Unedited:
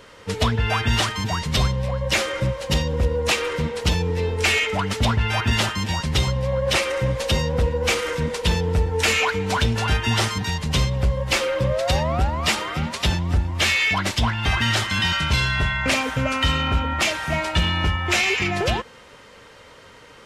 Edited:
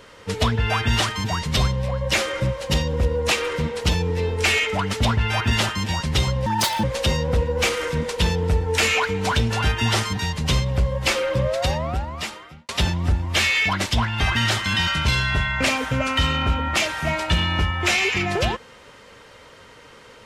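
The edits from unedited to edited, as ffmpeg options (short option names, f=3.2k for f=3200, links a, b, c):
-filter_complex "[0:a]asplit=4[a][b][c][d];[a]atrim=end=6.464[e];[b]atrim=start=6.46:end=7.09,asetpts=PTS-STARTPTS,asetrate=73647,aresample=44100[f];[c]atrim=start=7.086:end=12.94,asetpts=PTS-STARTPTS,afade=t=out:st=4.624:d=1.23[g];[d]atrim=start=12.94,asetpts=PTS-STARTPTS,afade=t=in:d=0.004:c=hsin[h];[e][f]acrossfade=d=0.004:c1=hsin:c2=hsin[i];[g][h]concat=n=2:v=0:a=1[j];[i][j]acrossfade=d=0.004:c1=hsin:c2=hsin"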